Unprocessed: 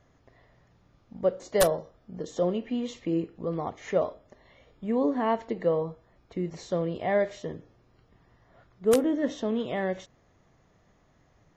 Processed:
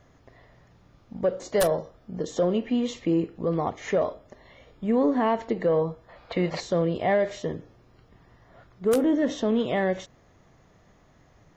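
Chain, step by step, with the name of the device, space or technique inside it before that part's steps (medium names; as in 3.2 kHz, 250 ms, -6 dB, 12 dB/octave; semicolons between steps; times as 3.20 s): soft clipper into limiter (saturation -14.5 dBFS, distortion -21 dB; peak limiter -21 dBFS, peak gain reduction 5.5 dB); time-frequency box 6.09–6.60 s, 470–5100 Hz +12 dB; trim +5.5 dB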